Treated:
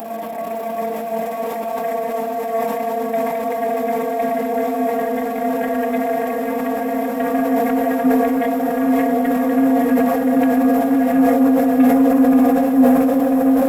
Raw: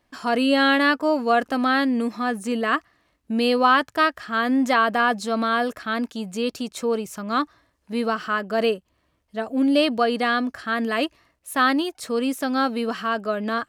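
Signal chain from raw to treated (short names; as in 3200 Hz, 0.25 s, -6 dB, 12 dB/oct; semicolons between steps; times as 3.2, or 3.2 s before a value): HPF 630 Hz 12 dB/oct; Paulstretch 46×, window 0.50 s, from 4.26; inverse Chebyshev band-stop 1300–7500 Hz, stop band 40 dB; in parallel at -1 dB: limiter -31.5 dBFS, peak gain reduction 10 dB; on the sum: transient shaper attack +11 dB, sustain -11 dB; sample leveller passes 2; diffused feedback echo 0.635 s, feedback 59%, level -4 dB; reverb RT60 0.40 s, pre-delay 3 ms, DRR 3.5 dB; sustainer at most 21 dB/s; gain +4 dB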